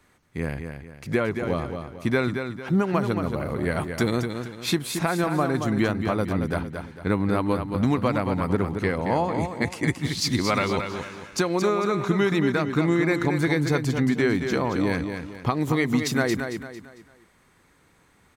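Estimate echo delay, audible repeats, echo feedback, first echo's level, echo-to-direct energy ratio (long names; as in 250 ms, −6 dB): 225 ms, 4, 37%, −7.0 dB, −6.5 dB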